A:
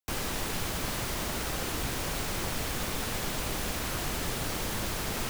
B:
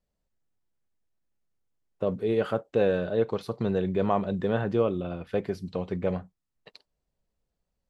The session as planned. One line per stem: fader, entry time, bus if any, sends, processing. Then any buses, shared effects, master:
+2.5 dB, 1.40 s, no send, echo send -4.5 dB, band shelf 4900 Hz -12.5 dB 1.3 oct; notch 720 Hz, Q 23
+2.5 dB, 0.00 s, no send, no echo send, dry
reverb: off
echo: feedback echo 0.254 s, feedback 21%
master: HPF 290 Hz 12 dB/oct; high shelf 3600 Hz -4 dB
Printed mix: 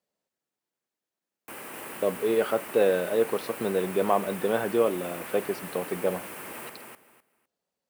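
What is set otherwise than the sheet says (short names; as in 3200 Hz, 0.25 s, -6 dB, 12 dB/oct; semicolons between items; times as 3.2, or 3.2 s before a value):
stem A +2.5 dB -> -5.0 dB; master: missing high shelf 3600 Hz -4 dB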